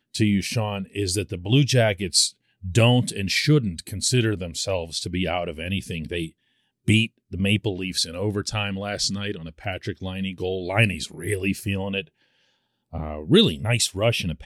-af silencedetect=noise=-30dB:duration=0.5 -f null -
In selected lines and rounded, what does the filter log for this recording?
silence_start: 6.27
silence_end: 6.88 | silence_duration: 0.61
silence_start: 12.01
silence_end: 12.94 | silence_duration: 0.93